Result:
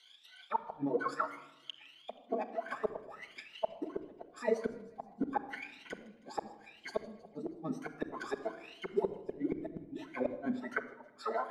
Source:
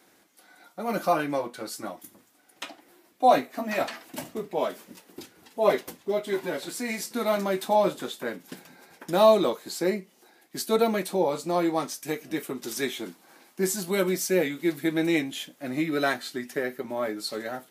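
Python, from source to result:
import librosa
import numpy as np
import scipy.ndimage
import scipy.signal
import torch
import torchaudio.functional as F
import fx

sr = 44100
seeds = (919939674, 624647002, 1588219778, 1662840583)

p1 = fx.spec_ripple(x, sr, per_octave=1.9, drift_hz=2.0, depth_db=17)
p2 = scipy.signal.sosfilt(scipy.signal.butter(2, 11000.0, 'lowpass', fs=sr, output='sos'), p1)
p3 = fx.auto_wah(p2, sr, base_hz=210.0, top_hz=3500.0, q=10.0, full_db=-20.5, direction='down')
p4 = fx.gate_flip(p3, sr, shuts_db=-34.0, range_db=-40)
p5 = fx.stretch_grains(p4, sr, factor=0.65, grain_ms=73.0)
p6 = p5 + fx.echo_wet_highpass(p5, sr, ms=159, feedback_pct=61, hz=2500.0, wet_db=-19, dry=0)
p7 = fx.room_shoebox(p6, sr, seeds[0], volume_m3=3900.0, walls='furnished', distance_m=1.5)
y = p7 * librosa.db_to_amplitude(14.0)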